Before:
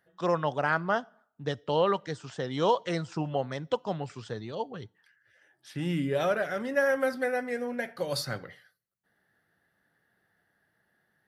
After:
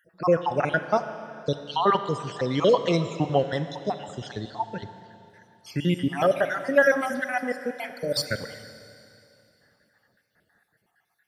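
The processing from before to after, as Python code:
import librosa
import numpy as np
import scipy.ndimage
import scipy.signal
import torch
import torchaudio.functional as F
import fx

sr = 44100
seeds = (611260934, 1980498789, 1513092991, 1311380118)

y = fx.spec_dropout(x, sr, seeds[0], share_pct=57)
y = fx.rev_schroeder(y, sr, rt60_s=2.8, comb_ms=28, drr_db=10.0)
y = y * librosa.db_to_amplitude(8.0)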